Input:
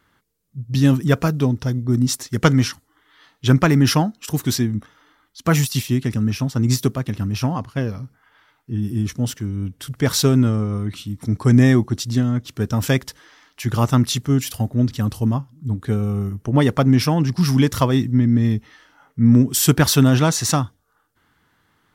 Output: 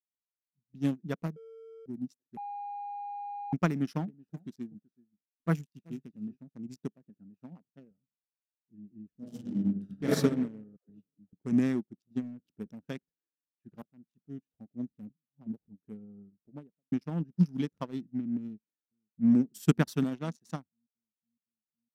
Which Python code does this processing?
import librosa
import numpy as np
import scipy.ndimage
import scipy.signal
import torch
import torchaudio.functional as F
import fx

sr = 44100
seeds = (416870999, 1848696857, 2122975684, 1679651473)

y = fx.echo_single(x, sr, ms=378, db=-10.0, at=(4.06, 6.37), fade=0.02)
y = fx.highpass(y, sr, hz=120.0, slope=12, at=(6.94, 7.91))
y = fx.reverb_throw(y, sr, start_s=9.11, length_s=1.01, rt60_s=1.5, drr_db=-8.0)
y = fx.dispersion(y, sr, late='lows', ms=133.0, hz=510.0, at=(10.76, 11.33))
y = fx.transient(y, sr, attack_db=3, sustain_db=10, at=(12.07, 12.71))
y = fx.studio_fade_out(y, sr, start_s=16.3, length_s=0.62)
y = fx.echo_throw(y, sr, start_s=18.4, length_s=0.93, ms=510, feedback_pct=70, wet_db=-17.5)
y = fx.highpass(y, sr, hz=120.0, slope=6, at=(20.03, 20.5))
y = fx.edit(y, sr, fx.bleep(start_s=1.36, length_s=0.5, hz=451.0, db=-16.5),
    fx.bleep(start_s=2.37, length_s=1.16, hz=815.0, db=-13.0),
    fx.fade_in_from(start_s=13.82, length_s=0.69, floor_db=-16.0),
    fx.reverse_span(start_s=15.1, length_s=0.58), tone=tone)
y = fx.wiener(y, sr, points=41)
y = fx.low_shelf_res(y, sr, hz=140.0, db=-7.0, q=3.0)
y = fx.upward_expand(y, sr, threshold_db=-34.0, expansion=2.5)
y = y * 10.0 ** (-8.5 / 20.0)